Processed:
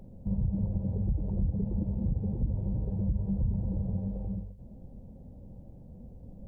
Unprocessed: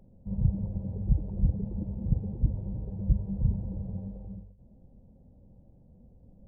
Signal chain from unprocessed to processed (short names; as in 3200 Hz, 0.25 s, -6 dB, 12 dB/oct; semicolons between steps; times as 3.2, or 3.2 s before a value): limiter -22.5 dBFS, peak gain reduction 10.5 dB; compressor 2:1, threshold -38 dBFS, peak gain reduction 7.5 dB; gain +8 dB